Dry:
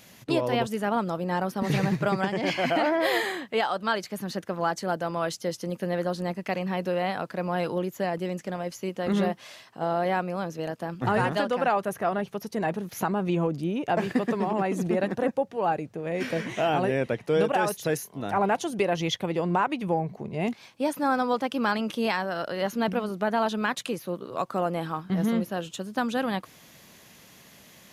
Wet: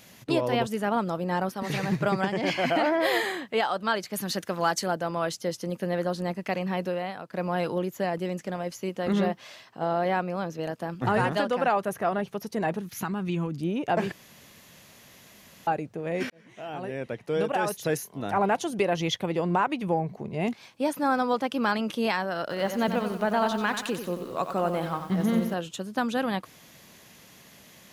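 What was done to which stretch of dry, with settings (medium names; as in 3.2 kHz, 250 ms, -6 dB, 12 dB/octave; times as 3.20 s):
1.49–1.89 s: bass shelf 500 Hz -7 dB
4.13–4.88 s: treble shelf 2.2 kHz +9.5 dB
6.82–7.33 s: fade out quadratic, to -9 dB
9.13–10.63 s: peaking EQ 10 kHz -6 dB
12.80–13.61 s: peaking EQ 590 Hz -12.5 dB 1.3 oct
14.12–15.67 s: room tone
16.30–17.95 s: fade in
22.41–25.54 s: bit-crushed delay 91 ms, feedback 55%, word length 8-bit, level -8 dB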